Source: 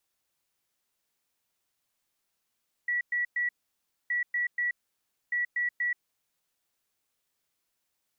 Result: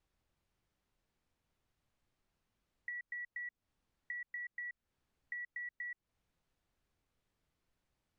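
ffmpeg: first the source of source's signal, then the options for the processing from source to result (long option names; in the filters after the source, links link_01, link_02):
-f lavfi -i "aevalsrc='0.0531*sin(2*PI*1940*t)*clip(min(mod(mod(t,1.22),0.24),0.13-mod(mod(t,1.22),0.24))/0.005,0,1)*lt(mod(t,1.22),0.72)':duration=3.66:sample_rate=44100"
-af "aemphasis=mode=reproduction:type=riaa,acompressor=threshold=-43dB:ratio=6"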